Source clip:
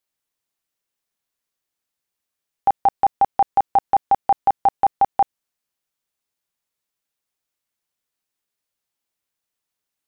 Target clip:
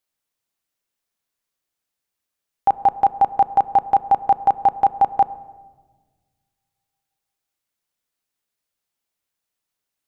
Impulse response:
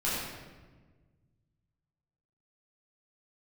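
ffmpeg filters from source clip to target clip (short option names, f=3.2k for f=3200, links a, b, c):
-filter_complex "[0:a]asplit=2[a][b];[b]lowpass=f=1.4k:p=1[c];[1:a]atrim=start_sample=2205[d];[c][d]afir=irnorm=-1:irlink=0,volume=-21.5dB[e];[a][e]amix=inputs=2:normalize=0"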